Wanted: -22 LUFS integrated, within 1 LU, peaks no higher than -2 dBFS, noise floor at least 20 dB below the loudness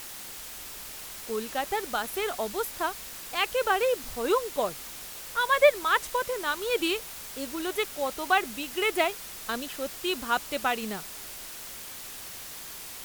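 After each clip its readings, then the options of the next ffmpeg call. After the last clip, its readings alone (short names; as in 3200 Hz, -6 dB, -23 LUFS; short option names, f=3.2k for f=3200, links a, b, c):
noise floor -42 dBFS; noise floor target -50 dBFS; loudness -29.5 LUFS; peak -7.0 dBFS; loudness target -22.0 LUFS
-> -af "afftdn=nr=8:nf=-42"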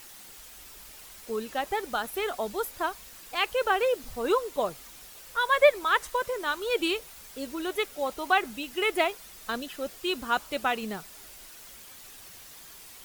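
noise floor -48 dBFS; noise floor target -49 dBFS
-> -af "afftdn=nr=6:nf=-48"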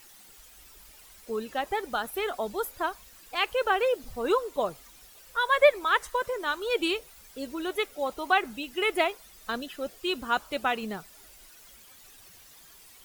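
noise floor -53 dBFS; loudness -28.5 LUFS; peak -7.5 dBFS; loudness target -22.0 LUFS
-> -af "volume=6.5dB,alimiter=limit=-2dB:level=0:latency=1"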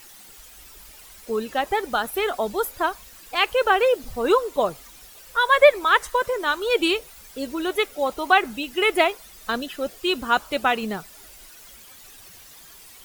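loudness -22.0 LUFS; peak -2.0 dBFS; noise floor -47 dBFS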